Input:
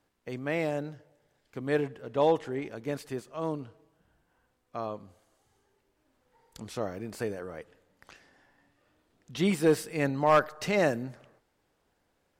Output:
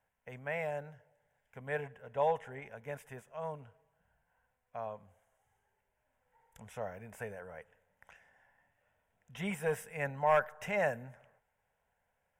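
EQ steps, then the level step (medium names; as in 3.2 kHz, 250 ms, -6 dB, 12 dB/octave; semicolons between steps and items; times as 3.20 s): peaking EQ 1.2 kHz +12.5 dB 0.72 oct; static phaser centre 1.2 kHz, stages 6; -6.0 dB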